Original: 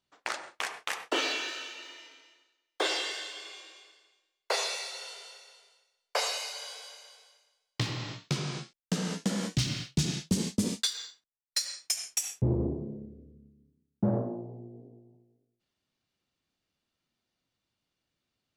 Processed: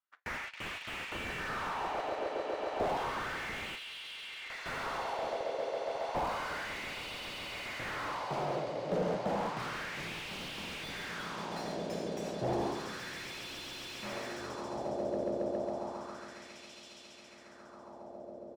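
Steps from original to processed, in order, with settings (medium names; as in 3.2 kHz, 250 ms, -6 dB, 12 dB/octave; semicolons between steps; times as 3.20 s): frequency-shifting echo 361 ms, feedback 61%, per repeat -130 Hz, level -14 dB; waveshaping leveller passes 3; echo with a slow build-up 137 ms, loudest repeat 8, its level -13 dB; wah-wah 0.31 Hz 550–2900 Hz, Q 2.7; 3.75–4.66 s: compression 3:1, threshold -48 dBFS, peak gain reduction 16 dB; slew-rate limiter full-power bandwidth 16 Hz; trim +3 dB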